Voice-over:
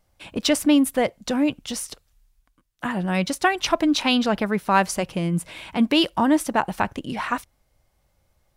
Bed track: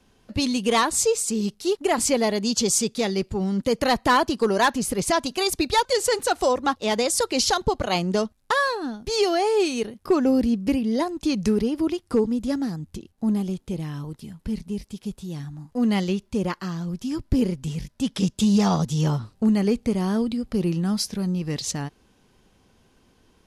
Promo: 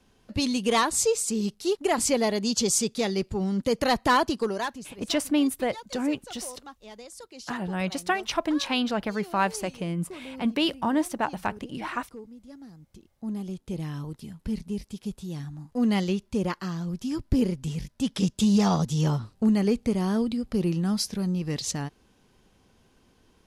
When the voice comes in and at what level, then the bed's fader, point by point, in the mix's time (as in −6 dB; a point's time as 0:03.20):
4.65 s, −6.0 dB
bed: 0:04.32 −2.5 dB
0:05.07 −22 dB
0:12.46 −22 dB
0:13.84 −2 dB